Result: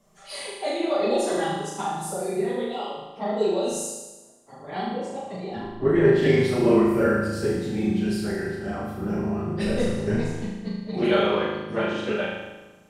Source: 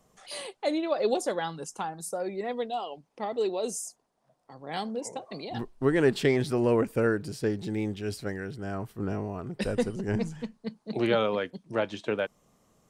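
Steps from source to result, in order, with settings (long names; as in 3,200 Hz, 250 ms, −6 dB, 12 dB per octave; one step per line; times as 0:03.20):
random phases in long frames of 50 ms
0:04.71–0:06.23: low-pass filter 1,800 Hz 6 dB per octave
flutter between parallel walls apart 6.5 metres, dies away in 1.1 s
rectangular room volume 2,900 cubic metres, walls furnished, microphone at 1.2 metres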